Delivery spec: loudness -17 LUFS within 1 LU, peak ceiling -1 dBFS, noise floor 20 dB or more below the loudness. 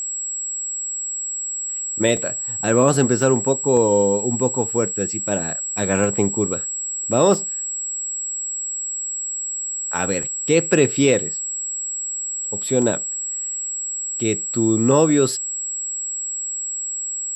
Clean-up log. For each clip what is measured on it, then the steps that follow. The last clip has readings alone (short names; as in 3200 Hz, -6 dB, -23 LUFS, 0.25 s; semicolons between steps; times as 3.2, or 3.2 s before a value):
dropouts 7; longest dropout 1.2 ms; steady tone 7700 Hz; tone level -24 dBFS; loudness -20.5 LUFS; peak -3.0 dBFS; loudness target -17.0 LUFS
-> interpolate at 2.17/3.22/3.77/6.04/7.34/10.23/12.82, 1.2 ms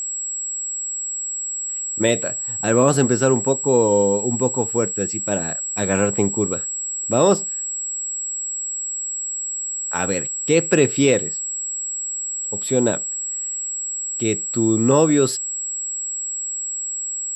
dropouts 0; steady tone 7700 Hz; tone level -24 dBFS
-> notch 7700 Hz, Q 30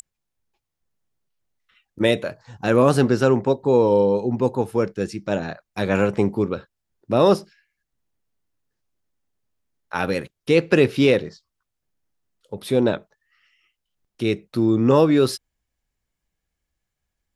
steady tone none; loudness -20.5 LUFS; peak -3.5 dBFS; loudness target -17.0 LUFS
-> gain +3.5 dB; limiter -1 dBFS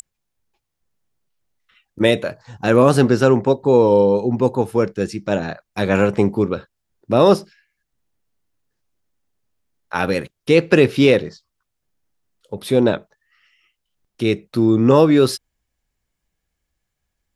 loudness -17.0 LUFS; peak -1.0 dBFS; noise floor -78 dBFS